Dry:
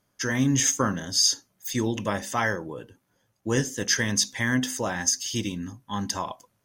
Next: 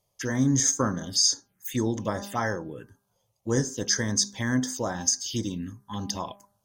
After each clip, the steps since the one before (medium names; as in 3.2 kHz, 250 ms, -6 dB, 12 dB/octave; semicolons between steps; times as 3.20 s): touch-sensitive phaser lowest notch 260 Hz, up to 2.7 kHz, full sweep at -24 dBFS; de-hum 200.9 Hz, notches 8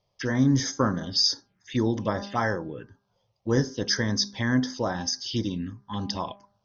steep low-pass 5.7 kHz 72 dB/octave; trim +2 dB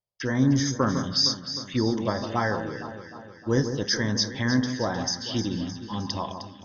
echo whose repeats swap between lows and highs 154 ms, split 1.5 kHz, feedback 73%, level -8 dB; gate with hold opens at -39 dBFS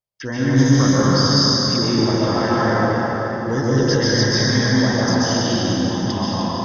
plate-style reverb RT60 4.6 s, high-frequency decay 0.55×, pre-delay 115 ms, DRR -9 dB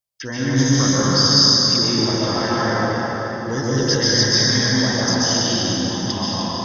treble shelf 2.8 kHz +10 dB; trim -3 dB